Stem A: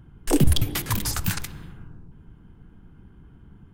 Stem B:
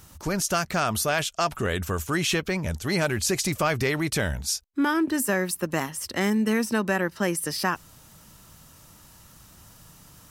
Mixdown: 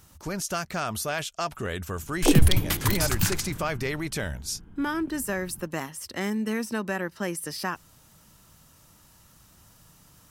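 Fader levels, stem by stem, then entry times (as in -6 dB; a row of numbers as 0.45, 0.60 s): +0.5, -5.0 dB; 1.95, 0.00 s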